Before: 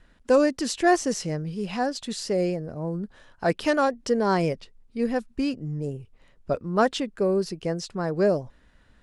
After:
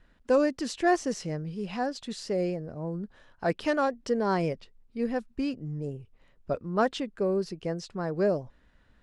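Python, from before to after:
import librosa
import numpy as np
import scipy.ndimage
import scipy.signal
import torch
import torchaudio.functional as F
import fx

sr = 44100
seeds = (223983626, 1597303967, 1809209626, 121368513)

y = fx.high_shelf(x, sr, hz=7600.0, db=-10.0)
y = F.gain(torch.from_numpy(y), -4.0).numpy()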